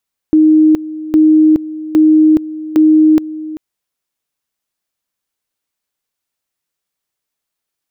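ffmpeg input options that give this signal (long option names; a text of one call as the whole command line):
ffmpeg -f lavfi -i "aevalsrc='pow(10,(-4.5-16.5*gte(mod(t,0.81),0.42))/20)*sin(2*PI*311*t)':duration=3.24:sample_rate=44100" out.wav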